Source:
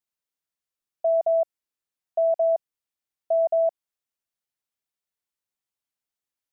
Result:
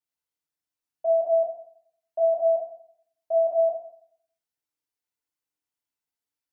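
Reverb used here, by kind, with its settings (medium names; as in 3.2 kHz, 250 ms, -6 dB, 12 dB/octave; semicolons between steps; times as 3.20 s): FDN reverb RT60 0.64 s, low-frequency decay 1×, high-frequency decay 0.75×, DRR -6 dB; trim -8 dB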